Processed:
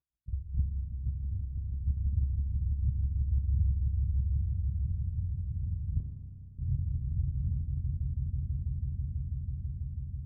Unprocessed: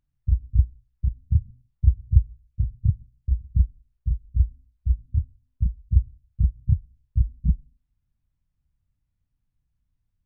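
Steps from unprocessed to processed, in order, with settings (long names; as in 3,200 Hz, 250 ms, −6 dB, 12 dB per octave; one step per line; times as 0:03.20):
linear-prediction vocoder at 8 kHz pitch kept
high-pass filter 52 Hz 12 dB per octave
echo that builds up and dies away 164 ms, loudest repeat 8, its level −5.5 dB
0:01.19–0:01.85: downward compressor, threshold −21 dBFS, peak gain reduction 6.5 dB
0:06.00–0:06.59: gate with flip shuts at −23 dBFS, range −30 dB
tuned comb filter 68 Hz, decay 1.7 s, harmonics all, mix 80%
spring reverb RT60 3.1 s, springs 32 ms, chirp 70 ms, DRR 4.5 dB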